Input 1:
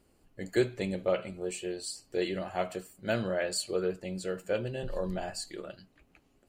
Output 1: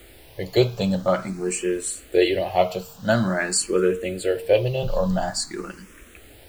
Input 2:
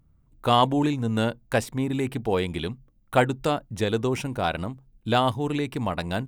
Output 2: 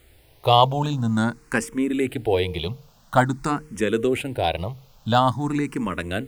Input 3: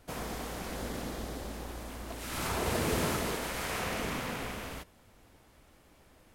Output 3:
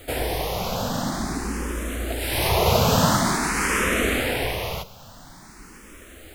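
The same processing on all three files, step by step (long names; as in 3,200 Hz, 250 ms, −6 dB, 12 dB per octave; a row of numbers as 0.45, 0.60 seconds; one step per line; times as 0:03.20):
hum removal 152.8 Hz, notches 3
background noise pink −59 dBFS
frequency shifter mixed with the dry sound +0.48 Hz
loudness normalisation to −23 LKFS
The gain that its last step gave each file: +13.5, +5.0, +15.5 decibels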